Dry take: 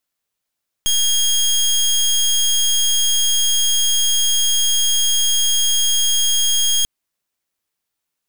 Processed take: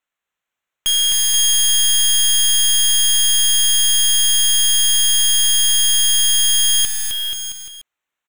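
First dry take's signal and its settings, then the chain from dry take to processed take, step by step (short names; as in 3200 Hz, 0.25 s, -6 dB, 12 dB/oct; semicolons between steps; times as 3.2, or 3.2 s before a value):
pulse 3260 Hz, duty 22% -16 dBFS 5.99 s
Wiener smoothing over 9 samples; tilt shelf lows -7 dB, about 740 Hz; on a send: bouncing-ball echo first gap 0.26 s, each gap 0.85×, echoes 5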